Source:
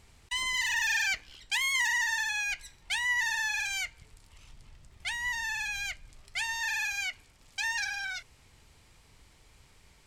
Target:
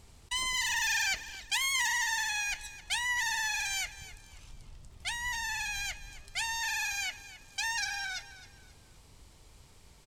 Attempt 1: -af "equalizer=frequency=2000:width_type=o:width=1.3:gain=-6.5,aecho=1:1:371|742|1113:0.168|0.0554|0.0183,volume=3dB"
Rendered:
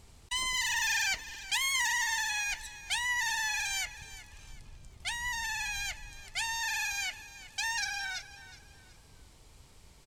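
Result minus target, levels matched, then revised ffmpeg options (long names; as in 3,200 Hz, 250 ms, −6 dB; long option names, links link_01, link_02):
echo 105 ms late
-af "equalizer=frequency=2000:width_type=o:width=1.3:gain=-6.5,aecho=1:1:266|532|798:0.168|0.0554|0.0183,volume=3dB"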